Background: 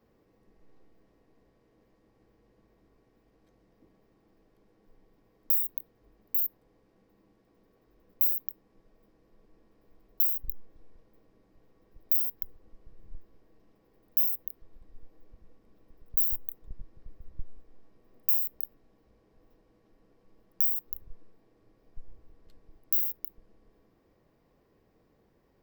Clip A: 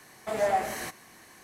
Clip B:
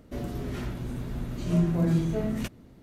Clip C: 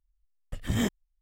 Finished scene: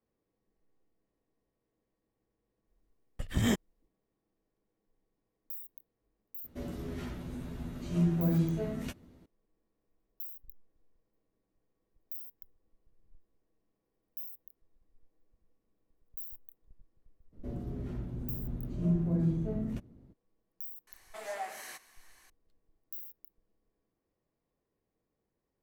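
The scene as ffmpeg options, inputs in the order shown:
ffmpeg -i bed.wav -i cue0.wav -i cue1.wav -i cue2.wav -filter_complex "[2:a]asplit=2[link_01][link_02];[0:a]volume=-17dB[link_03];[link_01]asplit=2[link_04][link_05];[link_05]adelay=12,volume=-6dB[link_06];[link_04][link_06]amix=inputs=2:normalize=0[link_07];[link_02]tiltshelf=frequency=850:gain=8[link_08];[1:a]highpass=frequency=1200:poles=1[link_09];[3:a]atrim=end=1.21,asetpts=PTS-STARTPTS,volume=-1dB,afade=type=in:duration=0.004:curve=hsin,afade=type=out:start_time=1.206:duration=0.004:curve=hsin,adelay=2670[link_10];[link_07]atrim=end=2.82,asetpts=PTS-STARTPTS,volume=-7dB,afade=type=in:duration=0.004:curve=hsin,afade=type=out:start_time=2.816:duration=0.004:curve=hsin,adelay=6440[link_11];[link_08]atrim=end=2.82,asetpts=PTS-STARTPTS,volume=-12dB,afade=type=in:duration=0.02,afade=type=out:start_time=2.8:duration=0.02,adelay=763812S[link_12];[link_09]atrim=end=1.43,asetpts=PTS-STARTPTS,volume=-7.5dB,afade=type=in:duration=0.004:curve=hsin,afade=type=out:start_time=1.426:duration=0.004:curve=hsin,adelay=20870[link_13];[link_03][link_10][link_11][link_12][link_13]amix=inputs=5:normalize=0" out.wav

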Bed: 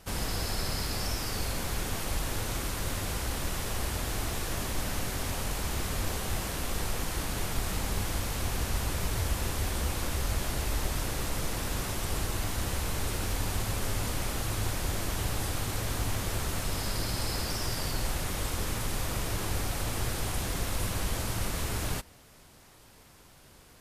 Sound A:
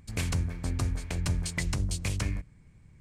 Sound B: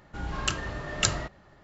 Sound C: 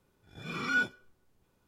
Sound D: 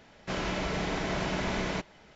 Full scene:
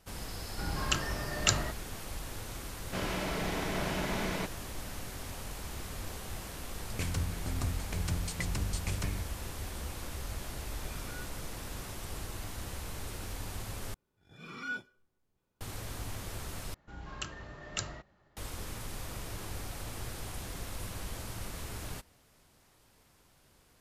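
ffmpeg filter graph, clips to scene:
ffmpeg -i bed.wav -i cue0.wav -i cue1.wav -i cue2.wav -i cue3.wav -filter_complex "[2:a]asplit=2[link_01][link_02];[3:a]asplit=2[link_03][link_04];[0:a]volume=-9dB[link_05];[link_03]acompressor=threshold=-45dB:ratio=6:attack=3.2:release=140:knee=1:detection=peak[link_06];[link_05]asplit=3[link_07][link_08][link_09];[link_07]atrim=end=13.944[link_10];[link_04]atrim=end=1.67,asetpts=PTS-STARTPTS,volume=-9.5dB[link_11];[link_08]atrim=start=15.606:end=16.744[link_12];[link_02]atrim=end=1.63,asetpts=PTS-STARTPTS,volume=-11.5dB[link_13];[link_09]atrim=start=18.366[link_14];[link_01]atrim=end=1.63,asetpts=PTS-STARTPTS,volume=-2dB,afade=type=in:duration=0.004:curve=hsin,afade=type=out:start_time=1.626:duration=0.004:curve=hsin,adelay=440[link_15];[4:a]atrim=end=2.15,asetpts=PTS-STARTPTS,volume=-3dB,afade=type=in:duration=0.004:curve=hsin,afade=type=out:start_time=2.146:duration=0.004:curve=hsin,adelay=2650[link_16];[1:a]atrim=end=3,asetpts=PTS-STARTPTS,volume=-5dB,afade=type=in:duration=0.004:curve=hsin,afade=type=out:start_time=2.996:duration=0.004:curve=hsin,adelay=300762S[link_17];[link_06]atrim=end=1.67,asetpts=PTS-STARTPTS,volume=-3.5dB,afade=type=in:duration=0.004:curve=hsin,afade=type=out:start_time=1.666:duration=0.004:curve=hsin,adelay=10410[link_18];[link_10][link_11]acrossfade=duration=0.004:curve1=hsin:curve2=hsin[link_19];[link_19][link_12]acrossfade=duration=0.004:curve1=hsin:curve2=hsin[link_20];[link_20][link_13]acrossfade=duration=0.004:curve1=hsin:curve2=hsin[link_21];[link_21][link_14]acrossfade=duration=0.004:curve1=hsin:curve2=hsin[link_22];[link_22][link_15][link_16][link_17][link_18]amix=inputs=5:normalize=0" out.wav

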